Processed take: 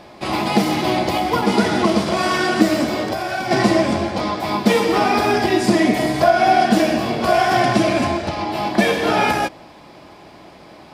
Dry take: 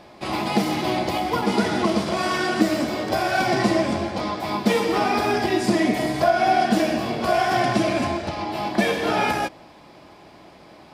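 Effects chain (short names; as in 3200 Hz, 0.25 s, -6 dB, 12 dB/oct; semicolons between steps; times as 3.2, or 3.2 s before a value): 3.05–3.51 compressor 6:1, threshold -25 dBFS, peak gain reduction 8 dB; gain +4.5 dB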